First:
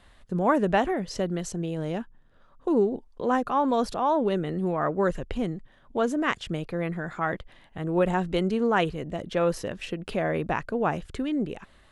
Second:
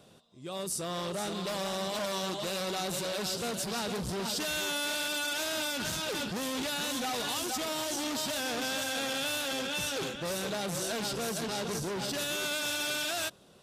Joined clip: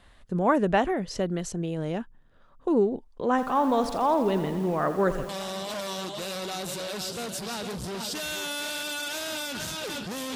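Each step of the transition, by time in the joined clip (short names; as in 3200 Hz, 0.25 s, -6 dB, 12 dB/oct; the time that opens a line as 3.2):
first
3.3–5.29 lo-fi delay 83 ms, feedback 80%, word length 7-bit, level -12 dB
5.29 switch to second from 1.54 s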